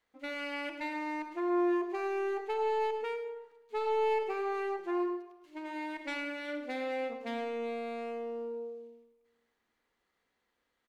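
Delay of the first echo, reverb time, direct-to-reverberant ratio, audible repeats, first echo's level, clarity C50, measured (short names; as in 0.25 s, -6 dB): 0.105 s, 1.1 s, 6.0 dB, 1, -11.5 dB, 7.0 dB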